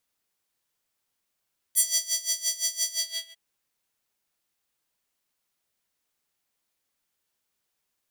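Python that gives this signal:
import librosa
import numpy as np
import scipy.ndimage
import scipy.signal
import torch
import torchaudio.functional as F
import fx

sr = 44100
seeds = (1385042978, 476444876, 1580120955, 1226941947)

y = fx.sub_patch_tremolo(sr, seeds[0], note=76, wave='square', wave2='saw', interval_st=0, detune_cents=16, level2_db=-17.0, sub_db=-13.5, noise_db=-30.0, kind='highpass', cutoff_hz=2900.0, q=2.1, env_oct=2.0, env_decay_s=0.12, env_sustain_pct=50, attack_ms=25.0, decay_s=0.22, sustain_db=-9.5, release_s=0.44, note_s=1.16, lfo_hz=5.8, tremolo_db=18)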